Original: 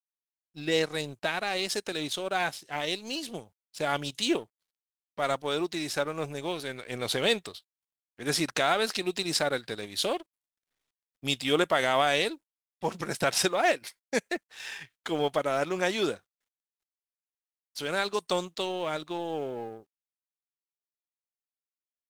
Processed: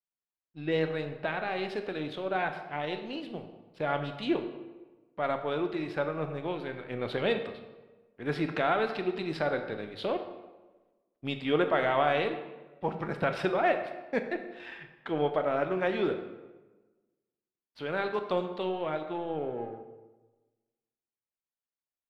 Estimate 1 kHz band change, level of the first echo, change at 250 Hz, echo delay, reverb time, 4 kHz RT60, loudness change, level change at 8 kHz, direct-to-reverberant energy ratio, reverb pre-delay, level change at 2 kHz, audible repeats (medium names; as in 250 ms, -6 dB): -1.0 dB, no echo, 0.0 dB, no echo, 1.2 s, 0.80 s, -2.0 dB, under -25 dB, 6.5 dB, 18 ms, -3.5 dB, no echo